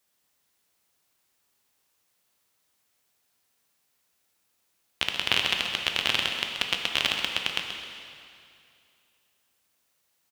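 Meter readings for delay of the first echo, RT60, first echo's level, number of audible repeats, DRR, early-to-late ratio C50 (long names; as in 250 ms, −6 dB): 131 ms, 2.5 s, −10.0 dB, 1, 2.0 dB, 3.0 dB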